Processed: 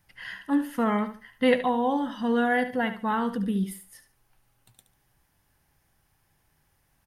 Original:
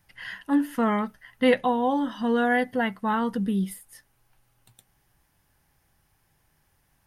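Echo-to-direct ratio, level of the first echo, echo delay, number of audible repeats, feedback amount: −10.5 dB, −11.0 dB, 72 ms, 3, 26%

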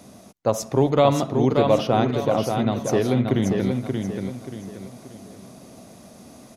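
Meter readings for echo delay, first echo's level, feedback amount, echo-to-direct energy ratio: 581 ms, −5.0 dB, 36%, −4.5 dB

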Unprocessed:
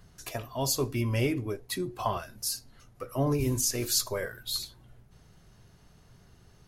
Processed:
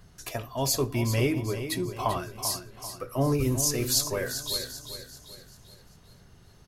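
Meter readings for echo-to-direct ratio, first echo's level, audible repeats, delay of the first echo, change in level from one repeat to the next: −9.0 dB, −10.0 dB, 4, 391 ms, −7.0 dB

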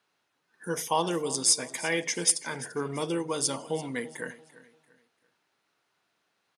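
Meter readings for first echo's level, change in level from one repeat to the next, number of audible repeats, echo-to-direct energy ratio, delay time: −18.0 dB, −9.5 dB, 2, −17.5 dB, 341 ms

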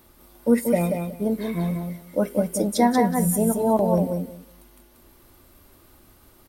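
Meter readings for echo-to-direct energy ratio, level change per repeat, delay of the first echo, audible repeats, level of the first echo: −5.0 dB, −15.0 dB, 185 ms, 3, −5.0 dB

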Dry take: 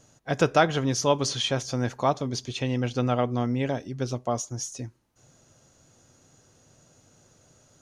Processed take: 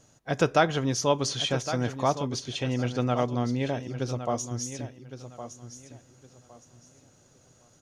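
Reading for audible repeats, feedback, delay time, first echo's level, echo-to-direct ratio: 2, 24%, 1,112 ms, −11.5 dB, −11.0 dB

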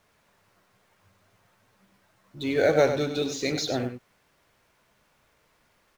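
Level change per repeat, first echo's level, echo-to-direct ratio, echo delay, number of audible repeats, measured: repeats not evenly spaced, −9.0 dB, −9.0 dB, 98 ms, 1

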